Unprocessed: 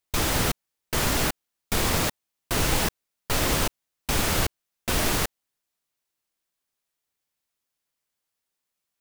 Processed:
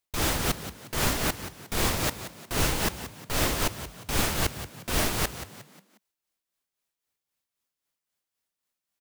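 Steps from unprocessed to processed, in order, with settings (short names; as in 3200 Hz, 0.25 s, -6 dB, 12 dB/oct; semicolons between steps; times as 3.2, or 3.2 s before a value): tremolo 3.8 Hz, depth 58%; frequency-shifting echo 0.179 s, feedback 40%, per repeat +46 Hz, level -12 dB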